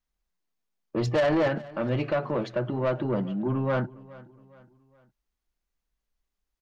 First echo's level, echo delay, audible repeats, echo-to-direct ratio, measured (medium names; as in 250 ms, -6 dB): -20.5 dB, 416 ms, 2, -19.5 dB